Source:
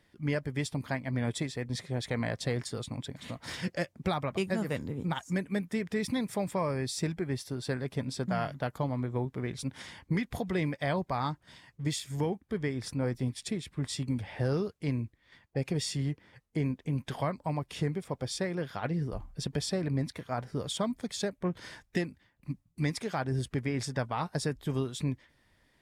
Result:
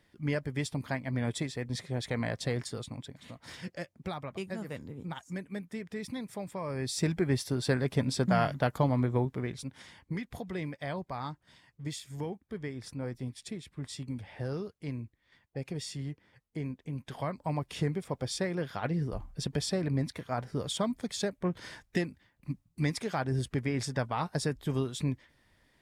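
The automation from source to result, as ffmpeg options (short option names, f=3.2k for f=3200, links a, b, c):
-af "volume=18dB,afade=t=out:st=2.62:d=0.57:silence=0.473151,afade=t=in:st=6.62:d=0.62:silence=0.251189,afade=t=out:st=9.05:d=0.65:silence=0.281838,afade=t=in:st=17.08:d=0.48:silence=0.473151"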